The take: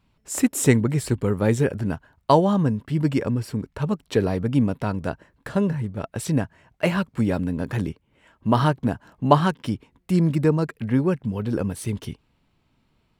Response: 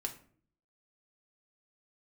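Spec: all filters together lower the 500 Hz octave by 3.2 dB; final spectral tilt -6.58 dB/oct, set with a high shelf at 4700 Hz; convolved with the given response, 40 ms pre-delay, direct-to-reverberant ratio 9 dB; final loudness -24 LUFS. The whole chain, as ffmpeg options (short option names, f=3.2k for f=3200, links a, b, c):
-filter_complex "[0:a]equalizer=f=500:t=o:g=-4,highshelf=f=4.7k:g=-5.5,asplit=2[a][b];[1:a]atrim=start_sample=2205,adelay=40[c];[b][c]afir=irnorm=-1:irlink=0,volume=-9dB[d];[a][d]amix=inputs=2:normalize=0"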